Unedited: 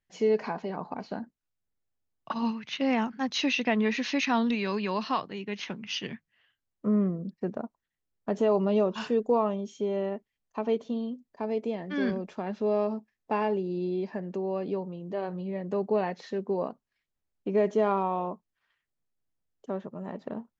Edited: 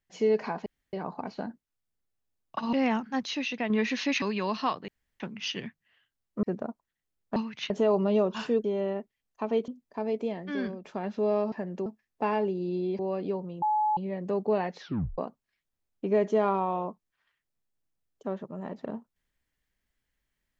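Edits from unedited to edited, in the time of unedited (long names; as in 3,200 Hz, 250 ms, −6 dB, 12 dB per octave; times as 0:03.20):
0:00.66: splice in room tone 0.27 s
0:02.46–0:02.80: move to 0:08.31
0:03.34–0:03.77: clip gain −5 dB
0:04.29–0:04.69: remove
0:05.35–0:05.67: fill with room tone
0:06.90–0:07.38: remove
0:09.25–0:09.80: remove
0:10.84–0:11.11: remove
0:11.76–0:12.27: fade out, to −9 dB
0:14.08–0:14.42: move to 0:12.95
0:15.05–0:15.40: beep over 852 Hz −22.5 dBFS
0:16.23: tape stop 0.38 s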